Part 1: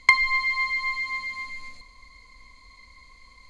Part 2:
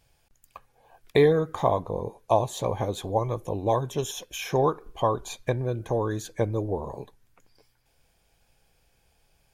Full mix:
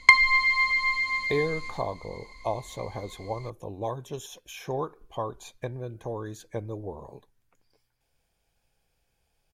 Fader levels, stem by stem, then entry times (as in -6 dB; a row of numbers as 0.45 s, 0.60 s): +2.0 dB, -8.0 dB; 0.00 s, 0.15 s